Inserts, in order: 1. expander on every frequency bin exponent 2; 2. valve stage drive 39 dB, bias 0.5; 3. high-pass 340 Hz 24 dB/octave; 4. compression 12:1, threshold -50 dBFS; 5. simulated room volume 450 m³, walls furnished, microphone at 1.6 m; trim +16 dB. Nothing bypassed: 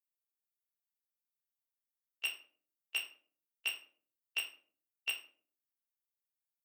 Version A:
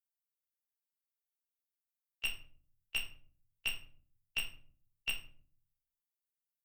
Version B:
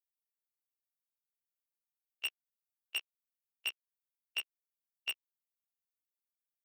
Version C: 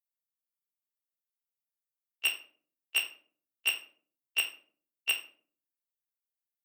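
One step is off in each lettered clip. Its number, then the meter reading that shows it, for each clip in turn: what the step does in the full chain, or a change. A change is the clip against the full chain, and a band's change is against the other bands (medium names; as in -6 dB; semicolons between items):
3, crest factor change -2.5 dB; 5, echo-to-direct -2.5 dB to none; 4, mean gain reduction 6.5 dB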